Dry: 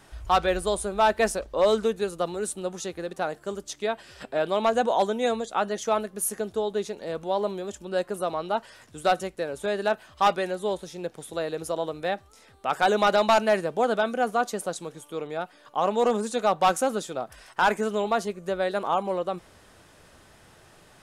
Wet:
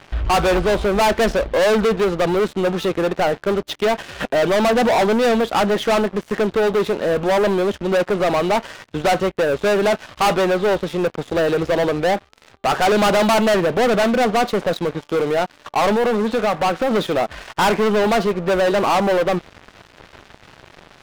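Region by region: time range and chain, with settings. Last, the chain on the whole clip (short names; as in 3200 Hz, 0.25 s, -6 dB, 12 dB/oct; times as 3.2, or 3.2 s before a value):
15.94–16.91 LPF 3900 Hz + compressor 2:1, threshold -33 dBFS
whole clip: LPF 3500 Hz 24 dB/oct; dynamic EQ 1900 Hz, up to -3 dB, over -35 dBFS, Q 1.2; sample leveller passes 5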